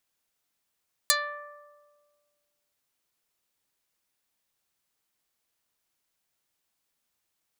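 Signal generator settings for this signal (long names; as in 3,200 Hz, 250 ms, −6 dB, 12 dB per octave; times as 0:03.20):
Karplus-Strong string D5, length 1.63 s, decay 1.70 s, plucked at 0.21, dark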